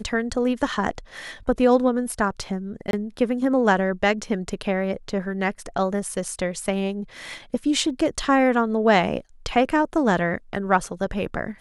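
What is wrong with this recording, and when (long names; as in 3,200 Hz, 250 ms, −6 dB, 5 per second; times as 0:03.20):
0:02.91–0:02.93: drop-out 22 ms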